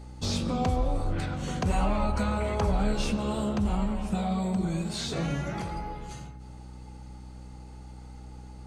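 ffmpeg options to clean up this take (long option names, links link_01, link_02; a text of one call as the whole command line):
ffmpeg -i in.wav -af "bandreject=frequency=62.6:width_type=h:width=4,bandreject=frequency=125.2:width_type=h:width=4,bandreject=frequency=187.8:width_type=h:width=4,bandreject=frequency=250.4:width_type=h:width=4,bandreject=frequency=313:width_type=h:width=4" out.wav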